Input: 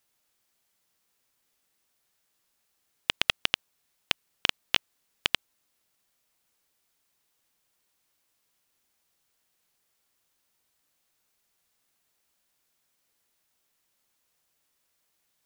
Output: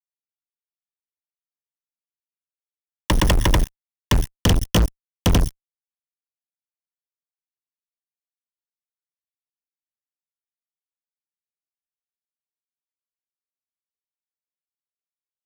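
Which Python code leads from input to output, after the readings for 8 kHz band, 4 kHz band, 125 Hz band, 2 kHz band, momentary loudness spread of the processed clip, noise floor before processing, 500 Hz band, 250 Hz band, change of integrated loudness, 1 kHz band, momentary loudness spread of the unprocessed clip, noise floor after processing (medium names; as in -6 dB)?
+12.5 dB, 0.0 dB, +30.0 dB, +0.5 dB, 9 LU, -75 dBFS, +16.0 dB, +24.0 dB, +7.5 dB, +11.0 dB, 6 LU, under -85 dBFS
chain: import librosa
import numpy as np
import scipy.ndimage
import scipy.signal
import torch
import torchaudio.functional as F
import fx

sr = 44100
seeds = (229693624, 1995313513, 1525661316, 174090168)

y = fx.lower_of_two(x, sr, delay_ms=1.1)
y = fx.ripple_eq(y, sr, per_octave=1.2, db=17)
y = fx.phaser_stages(y, sr, stages=2, low_hz=130.0, high_hz=1400.0, hz=0.24, feedback_pct=35)
y = fx.fuzz(y, sr, gain_db=57.0, gate_db=-51.0)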